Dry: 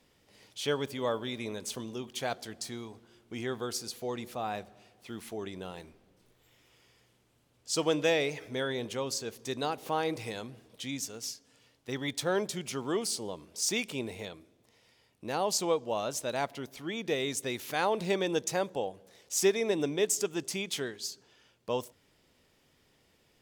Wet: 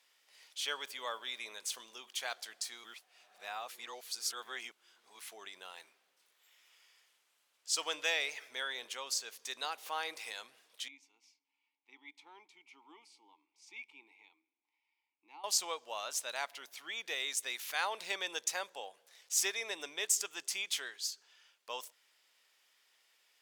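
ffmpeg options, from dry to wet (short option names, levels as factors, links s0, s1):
-filter_complex "[0:a]asettb=1/sr,asplit=3[s0][s1][s2];[s0]atrim=end=10.884[s3];[s1]atrim=start=10.88:end=15.44,asetpts=PTS-STARTPTS,afade=t=in:d=0.004:c=qsin,afade=t=out:st=4.556:d=0.004:c=qsin,asplit=3[s4][s5][s6];[s4]bandpass=f=300:t=q:w=8,volume=1[s7];[s5]bandpass=f=870:t=q:w=8,volume=0.501[s8];[s6]bandpass=f=2240:t=q:w=8,volume=0.355[s9];[s7][s8][s9]amix=inputs=3:normalize=0[s10];[s2]atrim=start=15.436[s11];[s3][s10]acrossfade=d=0.004:c1=hsin:c2=qsin[s12];[s12][s11]acrossfade=d=0.004:c1=qsin:c2=hsin,asplit=3[s13][s14][s15];[s13]atrim=end=2.842[s16];[s14]atrim=start=2.838:end=5.192,asetpts=PTS-STARTPTS,areverse[s17];[s15]atrim=start=5.188[s18];[s16][s17]acrossfade=d=0.004:c1=hsin:c2=hsin[s19];[s19][s18]acrossfade=d=0.004:c1=hsin:c2=hsin,highpass=1200"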